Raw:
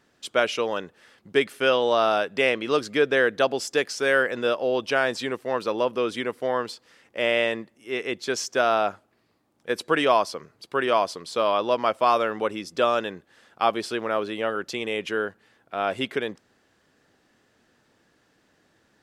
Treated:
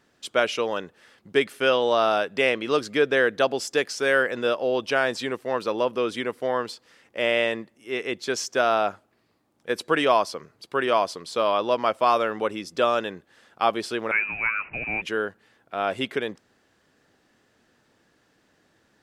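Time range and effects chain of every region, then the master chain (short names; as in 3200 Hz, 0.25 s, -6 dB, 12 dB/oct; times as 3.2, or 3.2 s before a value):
14.11–15.02 zero-crossing step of -36 dBFS + inverted band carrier 2800 Hz + three-band expander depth 70%
whole clip: dry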